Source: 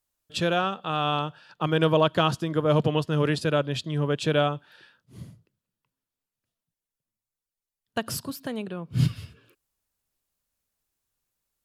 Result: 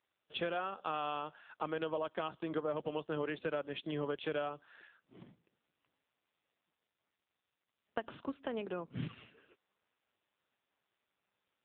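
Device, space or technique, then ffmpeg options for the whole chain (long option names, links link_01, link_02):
voicemail: -af "highpass=320,lowpass=3200,acompressor=threshold=-32dB:ratio=10" -ar 8000 -c:a libopencore_amrnb -b:a 5900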